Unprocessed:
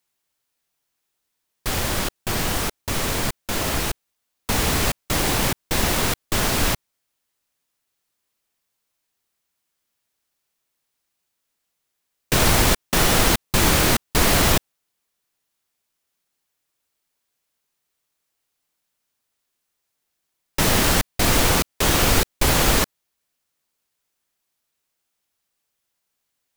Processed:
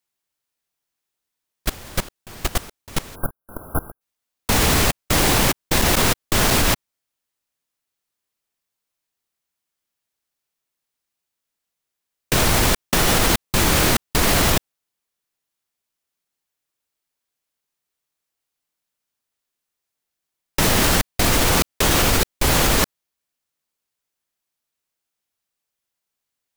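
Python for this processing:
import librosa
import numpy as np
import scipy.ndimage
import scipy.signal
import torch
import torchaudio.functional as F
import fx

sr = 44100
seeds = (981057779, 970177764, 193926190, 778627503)

y = fx.level_steps(x, sr, step_db=22)
y = fx.spec_erase(y, sr, start_s=3.15, length_s=0.86, low_hz=1600.0, high_hz=10000.0)
y = F.gain(torch.from_numpy(y), 5.5).numpy()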